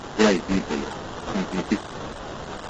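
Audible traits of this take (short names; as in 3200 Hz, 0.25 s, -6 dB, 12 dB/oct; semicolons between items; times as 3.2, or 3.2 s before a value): a quantiser's noise floor 6-bit, dither triangular; phasing stages 2, 1.4 Hz, lowest notch 730–2600 Hz; aliases and images of a low sample rate 2300 Hz, jitter 20%; AAC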